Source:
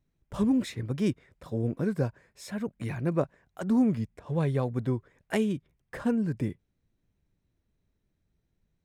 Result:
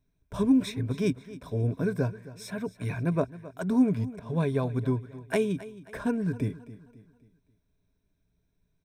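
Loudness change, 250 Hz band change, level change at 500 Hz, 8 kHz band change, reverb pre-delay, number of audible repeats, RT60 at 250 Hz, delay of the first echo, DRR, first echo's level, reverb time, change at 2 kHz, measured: +1.0 dB, +0.5 dB, +1.5 dB, +1.0 dB, no reverb audible, 3, no reverb audible, 267 ms, no reverb audible, −17.0 dB, no reverb audible, +2.0 dB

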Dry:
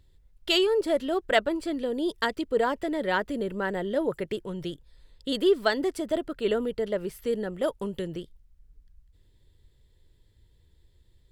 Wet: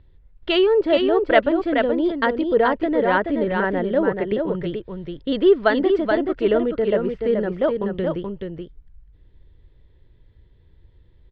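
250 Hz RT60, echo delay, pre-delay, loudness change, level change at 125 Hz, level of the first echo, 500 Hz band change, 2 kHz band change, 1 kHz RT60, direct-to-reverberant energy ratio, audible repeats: no reverb audible, 428 ms, no reverb audible, +7.5 dB, +8.5 dB, −5.0 dB, +8.0 dB, +6.5 dB, no reverb audible, no reverb audible, 1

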